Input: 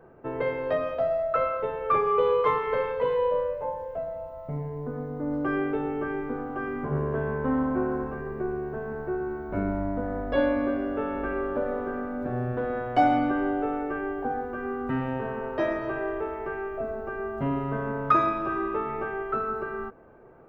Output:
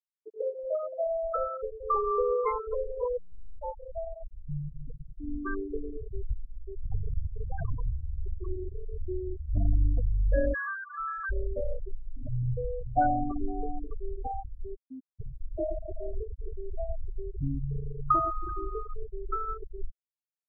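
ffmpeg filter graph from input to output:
ffmpeg -i in.wav -filter_complex "[0:a]asettb=1/sr,asplit=3[link_01][link_02][link_03];[link_01]atrim=end=3.174[link_04];[link_02]atrim=start=3.17:end=3.6,asetpts=PTS-STARTPTS,afade=type=in:duration=0.004:curve=qsin,afade=type=out:start_time=0.426:duration=0.004:curve=qsin,asuperstop=centerf=2300:order=20:qfactor=1.9,aeval=exprs='(tanh(100*val(0)+0.5)-tanh(0.5))/100':channel_layout=same[link_05];[link_03]atrim=start=3.596[link_06];[link_04][link_05]acrossfade=duration=0.004:curve1=hsin:curve2=qsin[link_07];[link_07][link_06]acrossfade=duration=0.004:curve1=qsin:curve2=hsin,asettb=1/sr,asplit=3[link_08][link_09][link_10];[link_08]atrim=end=5.904[link_11];[link_09]atrim=start=5.9:end=8.78,asetpts=PTS-STARTPTS,afade=type=in:duration=0.004:curve=qsin,afade=type=out:start_time=2.876:duration=0.004:curve=qsin,aeval=exprs='(mod(15*val(0)+1,2)-1)/15':channel_layout=same,aecho=1:1:114:0.106,atrim=end_sample=127008[link_12];[link_10]atrim=start=8.776[link_13];[link_11][link_12]acrossfade=duration=0.004:curve1=hsin:curve2=qsin[link_14];[link_14][link_13]acrossfade=duration=0.004:curve1=qsin:curve2=hsin,asettb=1/sr,asplit=3[link_15][link_16][link_17];[link_15]atrim=end=10.544[link_18];[link_16]atrim=start=10.54:end=11.3,asetpts=PTS-STARTPTS,afade=type=in:duration=0.004:curve=qsin,afade=type=out:start_time=0.756:duration=0.004:curve=qsin,highpass=frequency=1200:width=0.5412,highpass=frequency=1200:width=1.3066,aeval=exprs='0.0708*sin(PI/2*3.98*val(0)/0.0708)':channel_layout=same[link_19];[link_17]atrim=start=11.296[link_20];[link_18][link_19]acrossfade=duration=0.004:curve1=hsin:curve2=qsin[link_21];[link_21][link_20]acrossfade=duration=0.004:curve1=qsin:curve2=hsin,asettb=1/sr,asplit=3[link_22][link_23][link_24];[link_22]atrim=end=14.754[link_25];[link_23]atrim=start=14.75:end=15.2,asetpts=PTS-STARTPTS,afade=type=in:duration=0.004:curve=qsin,afade=type=out:start_time=0.446:duration=0.004:curve=qsin,asoftclip=type=hard:threshold=-27.5dB,bandpass=frequency=270:width_type=q:width=2.8[link_26];[link_24]atrim=start=15.196[link_27];[link_25][link_26]acrossfade=duration=0.004:curve1=hsin:curve2=qsin[link_28];[link_28][link_27]acrossfade=duration=0.004:curve1=qsin:curve2=hsin,asubboost=boost=9.5:cutoff=70,afftfilt=real='re*gte(hypot(re,im),0.178)':imag='im*gte(hypot(re,im),0.178)':win_size=1024:overlap=0.75,adynamicequalizer=threshold=0.00794:dfrequency=1200:dqfactor=0.96:tfrequency=1200:tqfactor=0.96:attack=5:release=100:ratio=0.375:range=1.5:mode=cutabove:tftype=bell,volume=-2.5dB" out.wav

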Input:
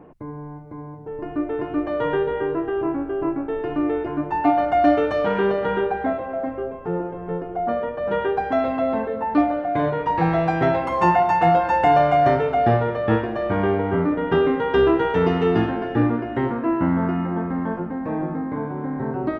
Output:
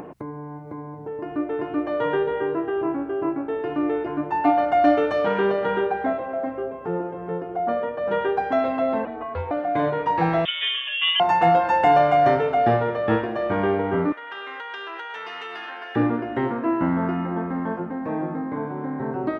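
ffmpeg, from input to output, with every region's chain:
ffmpeg -i in.wav -filter_complex "[0:a]asettb=1/sr,asplit=3[link_01][link_02][link_03];[link_01]atrim=end=9.054[link_04];[link_02]atrim=start=9.05:end=9.51,asetpts=PTS-STARTPTS,afade=type=in:duration=0.004:curve=qsin,afade=type=out:start_time=0.456:duration=0.004:curve=qsin,lowpass=frequency=3700:width=0.5412,lowpass=frequency=3700:width=1.3066,aeval=exprs='val(0)*sin(2*PI*210*n/s)':channel_layout=same,acrossover=split=140|3000[link_05][link_06][link_07];[link_06]acompressor=threshold=-27dB:ratio=6:attack=3.2:release=140:knee=2.83:detection=peak[link_08];[link_05][link_08][link_07]amix=inputs=3:normalize=0[link_09];[link_03]atrim=start=9.506[link_10];[link_04][link_09]acrossfade=duration=0.004:curve1=hsin:curve2=qsin[link_11];[link_11][link_10]acrossfade=duration=0.004:curve1=qsin:curve2=hsin,asettb=1/sr,asplit=3[link_12][link_13][link_14];[link_12]atrim=end=10.454[link_15];[link_13]atrim=start=10.45:end=11.2,asetpts=PTS-STARTPTS,afade=type=in:duration=0.004:curve=qsin,afade=type=out:start_time=0.746:duration=0.004:curve=qsin,highpass=frequency=1100:poles=1,asoftclip=type=hard:threshold=-14.5dB,lowpass=frequency=3200:width_type=q:width=0.5098,lowpass=frequency=3200:width_type=q:width=0.6013,lowpass=frequency=3200:width_type=q:width=0.9,lowpass=frequency=3200:width_type=q:width=2.563,afreqshift=-3800[link_16];[link_14]atrim=start=11.196[link_17];[link_15][link_16]acrossfade=duration=0.004:curve1=hsin:curve2=qsin[link_18];[link_18][link_17]acrossfade=duration=0.004:curve1=qsin:curve2=hsin,asettb=1/sr,asplit=3[link_19][link_20][link_21];[link_19]atrim=end=14.124[link_22];[link_20]atrim=start=14.12:end=15.96,asetpts=PTS-STARTPTS,afade=type=in:duration=0.004:curve=qsin,afade=type=out:start_time=1.836:duration=0.004:curve=qsin,highpass=1400,acompressor=threshold=-32dB:ratio=6:attack=3.2:release=140:knee=1:detection=peak[link_23];[link_21]atrim=start=15.956[link_24];[link_22][link_23]acrossfade=duration=0.004:curve1=hsin:curve2=qsin[link_25];[link_25][link_24]acrossfade=duration=0.004:curve1=qsin:curve2=hsin,highpass=65,lowshelf=frequency=150:gain=-7.5,acompressor=mode=upward:threshold=-29dB:ratio=2.5" out.wav

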